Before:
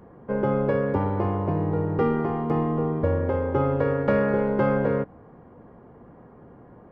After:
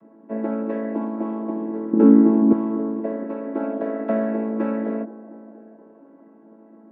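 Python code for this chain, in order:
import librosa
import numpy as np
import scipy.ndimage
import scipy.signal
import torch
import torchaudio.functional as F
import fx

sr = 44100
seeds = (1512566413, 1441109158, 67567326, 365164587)

p1 = fx.chord_vocoder(x, sr, chord='major triad', root=57)
p2 = fx.peak_eq(p1, sr, hz=220.0, db=14.5, octaves=2.2, at=(1.93, 2.53))
p3 = p2 + fx.echo_wet_bandpass(p2, sr, ms=237, feedback_pct=73, hz=540.0, wet_db=-13.5, dry=0)
y = p3 * 10.0 ** (-1.0 / 20.0)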